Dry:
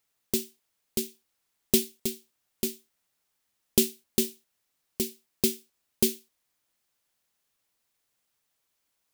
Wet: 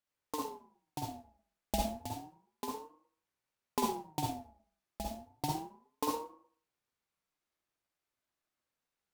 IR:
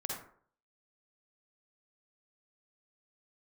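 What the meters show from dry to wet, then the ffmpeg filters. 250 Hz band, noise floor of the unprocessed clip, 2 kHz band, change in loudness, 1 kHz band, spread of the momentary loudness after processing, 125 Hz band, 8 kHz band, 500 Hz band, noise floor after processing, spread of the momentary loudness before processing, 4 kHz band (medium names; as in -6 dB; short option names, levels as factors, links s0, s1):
-9.0 dB, -78 dBFS, -7.5 dB, -10.5 dB, +19.0 dB, 17 LU, -2.5 dB, -14.5 dB, -9.0 dB, under -85 dBFS, 16 LU, -11.5 dB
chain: -filter_complex "[0:a]aemphasis=mode=reproduction:type=cd[s0];[1:a]atrim=start_sample=2205[s1];[s0][s1]afir=irnorm=-1:irlink=0,aeval=exprs='val(0)*sin(2*PI*570*n/s+570*0.25/0.31*sin(2*PI*0.31*n/s))':c=same,volume=0.562"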